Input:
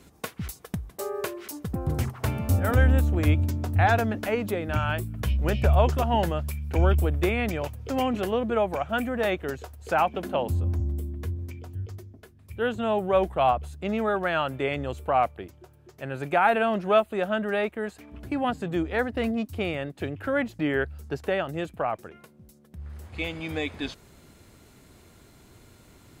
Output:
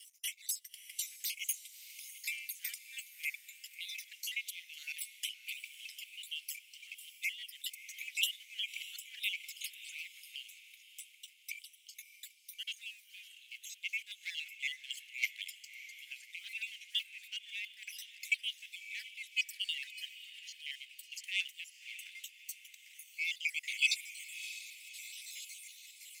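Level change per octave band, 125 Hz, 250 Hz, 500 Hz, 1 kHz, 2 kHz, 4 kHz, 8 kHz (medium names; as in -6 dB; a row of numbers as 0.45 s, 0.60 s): under -40 dB, under -40 dB, under -40 dB, under -40 dB, -7.0 dB, +1.5 dB, no reading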